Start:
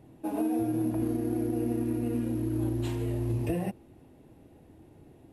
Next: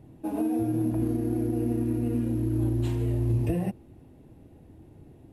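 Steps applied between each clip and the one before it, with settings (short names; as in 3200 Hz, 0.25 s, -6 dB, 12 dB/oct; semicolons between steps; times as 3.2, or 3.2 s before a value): low shelf 240 Hz +8.5 dB; gain -1.5 dB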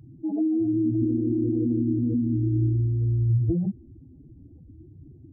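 spectral contrast raised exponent 2.5; gain +3.5 dB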